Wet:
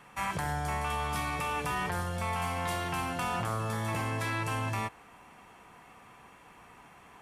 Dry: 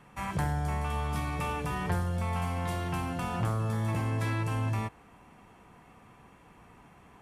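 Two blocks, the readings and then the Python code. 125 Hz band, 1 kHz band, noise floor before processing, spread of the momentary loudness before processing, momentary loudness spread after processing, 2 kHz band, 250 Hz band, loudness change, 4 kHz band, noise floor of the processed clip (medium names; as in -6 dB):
-5.5 dB, +2.5 dB, -57 dBFS, 3 LU, 1 LU, +4.0 dB, -3.5 dB, -1.0 dB, +4.5 dB, -55 dBFS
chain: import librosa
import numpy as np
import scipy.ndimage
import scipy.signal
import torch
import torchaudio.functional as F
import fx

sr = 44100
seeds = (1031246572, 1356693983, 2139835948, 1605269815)

p1 = fx.low_shelf(x, sr, hz=440.0, db=-11.0)
p2 = fx.over_compress(p1, sr, threshold_db=-37.0, ratio=-0.5)
p3 = p1 + (p2 * librosa.db_to_amplitude(2.0))
y = p3 * librosa.db_to_amplitude(-2.0)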